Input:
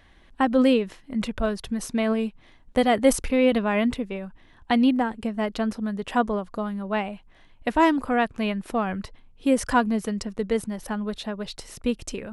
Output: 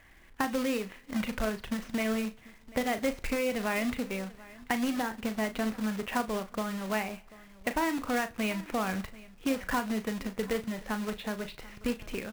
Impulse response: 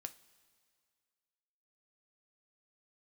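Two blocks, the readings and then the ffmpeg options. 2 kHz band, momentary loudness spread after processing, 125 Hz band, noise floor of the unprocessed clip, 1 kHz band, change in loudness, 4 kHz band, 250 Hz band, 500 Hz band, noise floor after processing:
−3.5 dB, 7 LU, −5.5 dB, −54 dBFS, −8.0 dB, −8.0 dB, −5.5 dB, −8.5 dB, −8.5 dB, −55 dBFS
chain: -filter_complex "[0:a]lowpass=frequency=2300:width_type=q:width=2,acrusher=bits=2:mode=log:mix=0:aa=0.000001,acompressor=threshold=-22dB:ratio=6,aecho=1:1:739:0.0944,asplit=2[link_01][link_02];[1:a]atrim=start_sample=2205,adelay=37[link_03];[link_02][link_03]afir=irnorm=-1:irlink=0,volume=-6dB[link_04];[link_01][link_04]amix=inputs=2:normalize=0,volume=-4.5dB"

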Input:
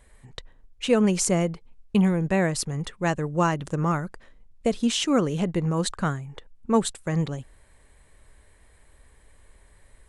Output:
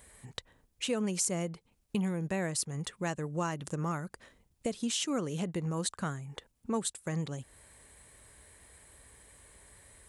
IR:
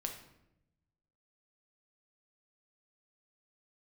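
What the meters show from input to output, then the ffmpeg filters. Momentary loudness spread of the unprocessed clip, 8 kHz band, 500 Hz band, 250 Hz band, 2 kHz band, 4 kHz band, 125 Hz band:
17 LU, −4.0 dB, −11.0 dB, −10.5 dB, −9.0 dB, −6.5 dB, −9.5 dB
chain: -af "highpass=68,highshelf=frequency=5800:gain=11.5,acompressor=threshold=-39dB:ratio=2"

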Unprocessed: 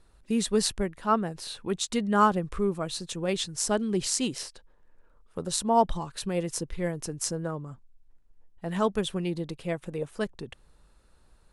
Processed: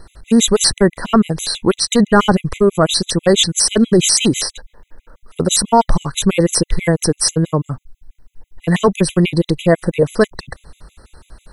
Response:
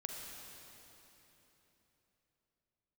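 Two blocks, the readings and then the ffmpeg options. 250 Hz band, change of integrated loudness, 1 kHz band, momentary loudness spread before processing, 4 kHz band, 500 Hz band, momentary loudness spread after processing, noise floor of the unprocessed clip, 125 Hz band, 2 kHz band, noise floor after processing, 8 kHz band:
+14.5 dB, +14.0 dB, +8.5 dB, 12 LU, +16.5 dB, +14.0 dB, 8 LU, −60 dBFS, +16.5 dB, +14.5 dB, −66 dBFS, +15.5 dB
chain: -af "apsyclip=25dB,afftfilt=real='re*gt(sin(2*PI*6.1*pts/sr)*(1-2*mod(floor(b*sr/1024/2000),2)),0)':imag='im*gt(sin(2*PI*6.1*pts/sr)*(1-2*mod(floor(b*sr/1024/2000),2)),0)':win_size=1024:overlap=0.75,volume=-4dB"

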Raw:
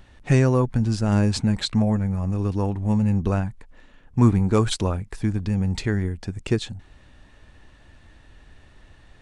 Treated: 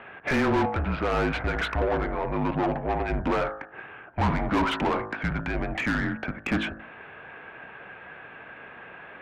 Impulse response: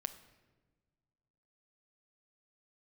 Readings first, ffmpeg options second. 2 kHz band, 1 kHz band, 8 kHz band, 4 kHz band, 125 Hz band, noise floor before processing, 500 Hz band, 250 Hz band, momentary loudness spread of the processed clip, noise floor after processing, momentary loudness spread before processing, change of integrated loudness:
+7.5 dB, +5.5 dB, −14.0 dB, −4.5 dB, −11.0 dB, −52 dBFS, −1.0 dB, −6.0 dB, 18 LU, −46 dBFS, 8 LU, −4.5 dB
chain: -filter_complex "[0:a]bandreject=frequency=52.76:width_type=h:width=4,bandreject=frequency=105.52:width_type=h:width=4,bandreject=frequency=158.28:width_type=h:width=4,bandreject=frequency=211.04:width_type=h:width=4,bandreject=frequency=263.8:width_type=h:width=4,bandreject=frequency=316.56:width_type=h:width=4,bandreject=frequency=369.32:width_type=h:width=4,bandreject=frequency=422.08:width_type=h:width=4,bandreject=frequency=474.84:width_type=h:width=4,bandreject=frequency=527.6:width_type=h:width=4,bandreject=frequency=580.36:width_type=h:width=4,bandreject=frequency=633.12:width_type=h:width=4,bandreject=frequency=685.88:width_type=h:width=4,bandreject=frequency=738.64:width_type=h:width=4,bandreject=frequency=791.4:width_type=h:width=4,bandreject=frequency=844.16:width_type=h:width=4,bandreject=frequency=896.92:width_type=h:width=4,bandreject=frequency=949.68:width_type=h:width=4,bandreject=frequency=1002.44:width_type=h:width=4,bandreject=frequency=1055.2:width_type=h:width=4,bandreject=frequency=1107.96:width_type=h:width=4,bandreject=frequency=1160.72:width_type=h:width=4,bandreject=frequency=1213.48:width_type=h:width=4,bandreject=frequency=1266.24:width_type=h:width=4,bandreject=frequency=1319:width_type=h:width=4,bandreject=frequency=1371.76:width_type=h:width=4,bandreject=frequency=1424.52:width_type=h:width=4,bandreject=frequency=1477.28:width_type=h:width=4,bandreject=frequency=1530.04:width_type=h:width=4,bandreject=frequency=1582.8:width_type=h:width=4,bandreject=frequency=1635.56:width_type=h:width=4,bandreject=frequency=1688.32:width_type=h:width=4,bandreject=frequency=1741.08:width_type=h:width=4,bandreject=frequency=1793.84:width_type=h:width=4,bandreject=frequency=1846.6:width_type=h:width=4,bandreject=frequency=1899.36:width_type=h:width=4,bandreject=frequency=1952.12:width_type=h:width=4,bandreject=frequency=2004.88:width_type=h:width=4,highpass=frequency=170:width_type=q:width=0.5412,highpass=frequency=170:width_type=q:width=1.307,lowpass=frequency=2800:width_type=q:width=0.5176,lowpass=frequency=2800:width_type=q:width=0.7071,lowpass=frequency=2800:width_type=q:width=1.932,afreqshift=-150,asplit=2[link_01][link_02];[link_02]highpass=frequency=720:poles=1,volume=32dB,asoftclip=type=tanh:threshold=-8.5dB[link_03];[link_01][link_03]amix=inputs=2:normalize=0,lowpass=frequency=2100:poles=1,volume=-6dB,volume=-7dB"

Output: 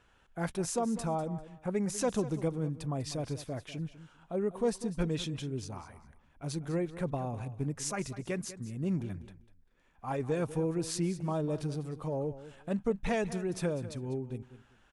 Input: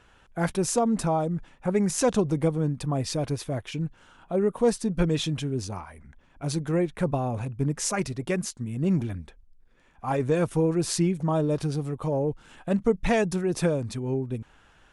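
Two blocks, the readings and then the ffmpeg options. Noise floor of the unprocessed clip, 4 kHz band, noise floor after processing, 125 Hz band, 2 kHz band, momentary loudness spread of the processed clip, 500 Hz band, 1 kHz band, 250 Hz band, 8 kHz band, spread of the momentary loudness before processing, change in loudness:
−59 dBFS, −8.0 dB, −65 dBFS, −8.0 dB, −8.0 dB, 10 LU, −8.0 dB, −8.0 dB, −8.0 dB, −8.0 dB, 9 LU, −8.0 dB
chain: -af "aecho=1:1:197|394:0.188|0.0433,volume=-8dB"

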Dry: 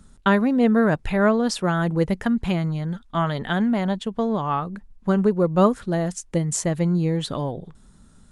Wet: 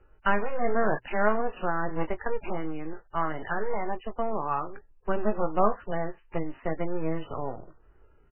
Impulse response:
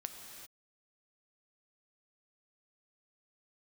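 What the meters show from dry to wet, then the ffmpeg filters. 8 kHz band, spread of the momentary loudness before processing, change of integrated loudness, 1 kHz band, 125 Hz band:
below −40 dB, 9 LU, −8.5 dB, −2.5 dB, −15.0 dB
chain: -filter_complex "[0:a]acrossover=split=110|570|1900[link_01][link_02][link_03][link_04];[link_01]acompressor=threshold=-48dB:ratio=8[link_05];[link_02]aeval=exprs='abs(val(0))':channel_layout=same[link_06];[link_05][link_06][link_03][link_04]amix=inputs=4:normalize=0,bandreject=frequency=60:width_type=h:width=6,bandreject=frequency=120:width_type=h:width=6,asplit=2[link_07][link_08];[link_08]adelay=19,volume=-10dB[link_09];[link_07][link_09]amix=inputs=2:normalize=0,volume=-4.5dB" -ar 8000 -c:a libmp3lame -b:a 8k

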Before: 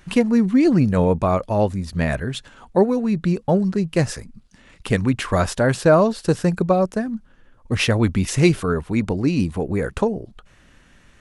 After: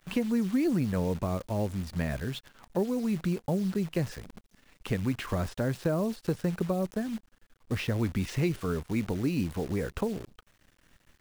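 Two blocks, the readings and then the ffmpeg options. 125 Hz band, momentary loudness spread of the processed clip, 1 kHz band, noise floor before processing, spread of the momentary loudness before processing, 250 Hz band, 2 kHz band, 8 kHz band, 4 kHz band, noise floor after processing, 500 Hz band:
−9.5 dB, 8 LU, −15.0 dB, −53 dBFS, 10 LU, −10.0 dB, −12.5 dB, −13.0 dB, −11.5 dB, −68 dBFS, −13.0 dB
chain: -filter_complex "[0:a]acrossover=split=420|5000[link_01][link_02][link_03];[link_01]acompressor=threshold=-18dB:ratio=4[link_04];[link_02]acompressor=threshold=-28dB:ratio=4[link_05];[link_03]acompressor=threshold=-51dB:ratio=4[link_06];[link_04][link_05][link_06]amix=inputs=3:normalize=0,acrusher=bits=7:dc=4:mix=0:aa=0.000001,volume=-7.5dB"

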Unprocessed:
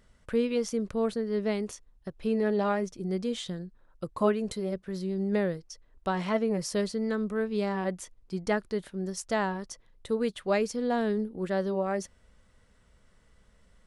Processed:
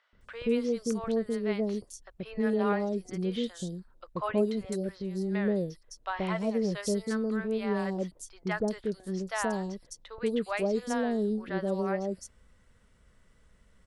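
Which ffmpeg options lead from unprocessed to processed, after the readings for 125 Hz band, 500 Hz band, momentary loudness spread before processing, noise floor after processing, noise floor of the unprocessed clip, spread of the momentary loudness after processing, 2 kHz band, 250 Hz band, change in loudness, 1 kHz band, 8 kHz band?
0.0 dB, −1.5 dB, 11 LU, −63 dBFS, −63 dBFS, 11 LU, −0.5 dB, 0.0 dB, −1.0 dB, −2.0 dB, −1.0 dB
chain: -filter_complex "[0:a]acrossover=split=700|4500[link_01][link_02][link_03];[link_01]adelay=130[link_04];[link_03]adelay=210[link_05];[link_04][link_02][link_05]amix=inputs=3:normalize=0"

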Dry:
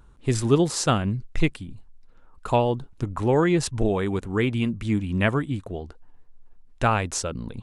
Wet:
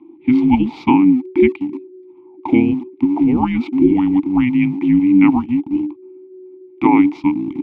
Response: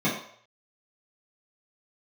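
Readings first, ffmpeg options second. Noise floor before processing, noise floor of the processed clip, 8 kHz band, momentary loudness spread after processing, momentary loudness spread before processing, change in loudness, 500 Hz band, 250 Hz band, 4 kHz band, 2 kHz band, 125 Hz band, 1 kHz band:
−51 dBFS, −44 dBFS, below −25 dB, 9 LU, 12 LU, +9.0 dB, +2.5 dB, +14.0 dB, can't be measured, +2.5 dB, −2.0 dB, +5.5 dB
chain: -filter_complex "[0:a]lowpass=frequency=4100:width=0.5412,lowpass=frequency=4100:width=1.3066,afreqshift=-380,asplit=2[link_01][link_02];[link_02]aeval=exprs='val(0)*gte(abs(val(0)),0.0224)':channel_layout=same,volume=-6dB[link_03];[link_01][link_03]amix=inputs=2:normalize=0,asplit=3[link_04][link_05][link_06];[link_04]bandpass=frequency=300:width_type=q:width=8,volume=0dB[link_07];[link_05]bandpass=frequency=870:width_type=q:width=8,volume=-6dB[link_08];[link_06]bandpass=frequency=2240:width_type=q:width=8,volume=-9dB[link_09];[link_07][link_08][link_09]amix=inputs=3:normalize=0,alimiter=level_in=18dB:limit=-1dB:release=50:level=0:latency=1,volume=-1dB"

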